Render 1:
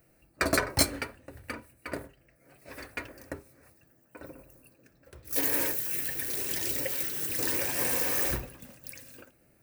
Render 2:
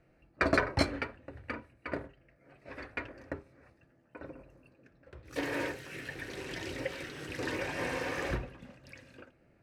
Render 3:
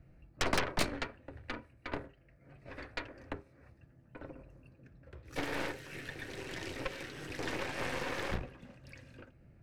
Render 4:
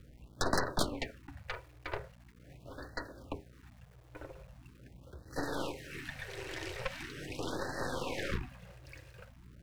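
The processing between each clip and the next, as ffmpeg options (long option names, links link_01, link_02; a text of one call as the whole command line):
ffmpeg -i in.wav -af "lowpass=3000" out.wav
ffmpeg -i in.wav -filter_complex "[0:a]aeval=exprs='0.266*(cos(1*acos(clip(val(0)/0.266,-1,1)))-cos(1*PI/2))+0.0944*(cos(3*acos(clip(val(0)/0.266,-1,1)))-cos(3*PI/2))+0.0188*(cos(7*acos(clip(val(0)/0.266,-1,1)))-cos(7*PI/2))+0.0299*(cos(8*acos(clip(val(0)/0.266,-1,1)))-cos(8*PI/2))':channel_layout=same,acrossover=split=170|480|5800[link_01][link_02][link_03][link_04];[link_01]acompressor=mode=upward:threshold=-49dB:ratio=2.5[link_05];[link_05][link_02][link_03][link_04]amix=inputs=4:normalize=0,asoftclip=type=tanh:threshold=-22.5dB,volume=2.5dB" out.wav
ffmpeg -i in.wav -af "aeval=exprs='val(0)+0.00141*(sin(2*PI*60*n/s)+sin(2*PI*2*60*n/s)/2+sin(2*PI*3*60*n/s)/3+sin(2*PI*4*60*n/s)/4+sin(2*PI*5*60*n/s)/5)':channel_layout=same,aeval=exprs='val(0)*gte(abs(val(0)),0.00126)':channel_layout=same,afftfilt=real='re*(1-between(b*sr/1024,200*pow(2800/200,0.5+0.5*sin(2*PI*0.42*pts/sr))/1.41,200*pow(2800/200,0.5+0.5*sin(2*PI*0.42*pts/sr))*1.41))':imag='im*(1-between(b*sr/1024,200*pow(2800/200,0.5+0.5*sin(2*PI*0.42*pts/sr))/1.41,200*pow(2800/200,0.5+0.5*sin(2*PI*0.42*pts/sr))*1.41))':win_size=1024:overlap=0.75,volume=1dB" out.wav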